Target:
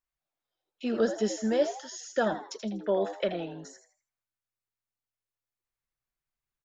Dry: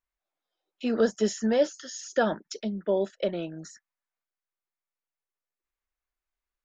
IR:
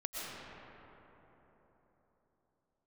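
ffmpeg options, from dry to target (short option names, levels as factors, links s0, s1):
-filter_complex "[0:a]asettb=1/sr,asplit=3[s0][s1][s2];[s0]atrim=end=2.834[s3];[s1]atrim=start=2.83:end=3.32,asetpts=PTS-STARTPTS,afade=t=in:d=0.004:c=qsin,afade=t=out:st=0.486:d=0.004:c=qsin,equalizer=f=1600:t=o:w=1.5:g=9.5[s4];[s2]atrim=start=3.316[s5];[s3][s4]acrossfade=d=0.004:c1=hsin:c2=qsin[s6];[s6][s5]acrossfade=d=0.004:c1=qsin:c2=hsin,asplit=2[s7][s8];[s8]asplit=4[s9][s10][s11][s12];[s9]adelay=81,afreqshift=110,volume=0.316[s13];[s10]adelay=162,afreqshift=220,volume=0.105[s14];[s11]adelay=243,afreqshift=330,volume=0.0343[s15];[s12]adelay=324,afreqshift=440,volume=0.0114[s16];[s13][s14][s15][s16]amix=inputs=4:normalize=0[s17];[s7][s17]amix=inputs=2:normalize=0,volume=0.708"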